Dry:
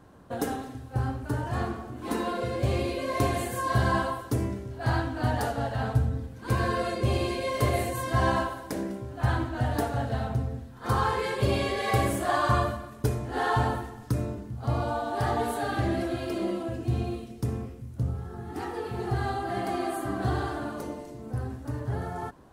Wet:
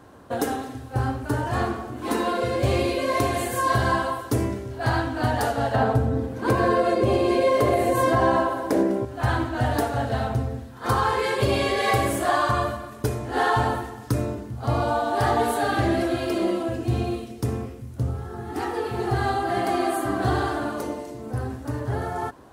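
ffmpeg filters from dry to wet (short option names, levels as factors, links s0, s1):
-filter_complex "[0:a]asettb=1/sr,asplit=3[s0][s1][s2];[s0]atrim=end=5.744[s3];[s1]atrim=start=5.74:end=9.05,asetpts=PTS-STARTPTS,afade=t=in:d=0.004:c=qsin,afade=t=out:st=3.306:d=0.004:c=qsin,equalizer=f=420:w=0.33:g=11[s4];[s2]atrim=start=9.046[s5];[s3][s4]acrossfade=d=0.004:c1=hsin:c2=qsin[s6];[s6][s5]acrossfade=d=0.004:c1=qsin:c2=hsin,highpass=f=96:p=1,equalizer=f=170:t=o:w=0.55:g=-7,alimiter=limit=0.126:level=0:latency=1:release=412,volume=2.24"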